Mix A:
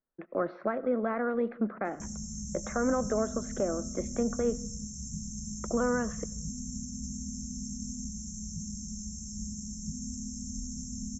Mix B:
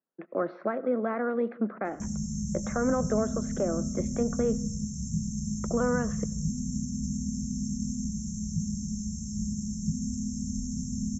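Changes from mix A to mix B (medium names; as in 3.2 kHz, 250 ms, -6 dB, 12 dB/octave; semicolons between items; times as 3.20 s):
speech: add high-pass 300 Hz 12 dB/octave; master: add peaking EQ 140 Hz +11.5 dB 1.8 oct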